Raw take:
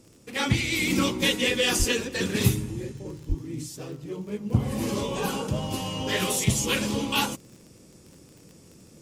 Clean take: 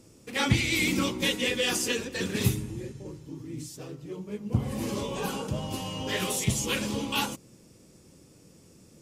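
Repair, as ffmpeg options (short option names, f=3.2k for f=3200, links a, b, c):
-filter_complex "[0:a]adeclick=t=4,asplit=3[a][b][c];[a]afade=t=out:st=1.78:d=0.02[d];[b]highpass=f=140:w=0.5412,highpass=f=140:w=1.3066,afade=t=in:st=1.78:d=0.02,afade=t=out:st=1.9:d=0.02[e];[c]afade=t=in:st=1.9:d=0.02[f];[d][e][f]amix=inputs=3:normalize=0,asplit=3[g][h][i];[g]afade=t=out:st=3.28:d=0.02[j];[h]highpass=f=140:w=0.5412,highpass=f=140:w=1.3066,afade=t=in:st=3.28:d=0.02,afade=t=out:st=3.4:d=0.02[k];[i]afade=t=in:st=3.4:d=0.02[l];[j][k][l]amix=inputs=3:normalize=0,asetnsamples=n=441:p=0,asendcmd='0.9 volume volume -3.5dB',volume=0dB"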